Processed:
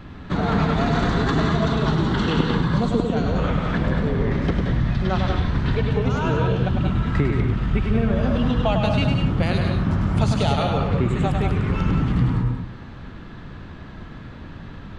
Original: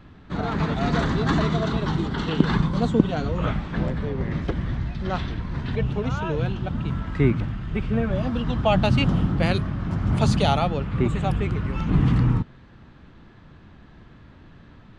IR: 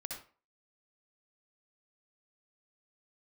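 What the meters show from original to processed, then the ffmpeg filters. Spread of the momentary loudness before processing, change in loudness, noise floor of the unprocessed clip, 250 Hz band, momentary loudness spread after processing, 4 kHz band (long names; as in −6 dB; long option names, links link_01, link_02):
8 LU, +2.5 dB, −49 dBFS, +2.5 dB, 18 LU, +2.0 dB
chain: -filter_complex "[0:a]acompressor=threshold=-27dB:ratio=6,asplit=2[link_01][link_02];[1:a]atrim=start_sample=2205,asetrate=36162,aresample=44100,adelay=101[link_03];[link_02][link_03]afir=irnorm=-1:irlink=0,volume=-1.5dB[link_04];[link_01][link_04]amix=inputs=2:normalize=0,volume=8dB"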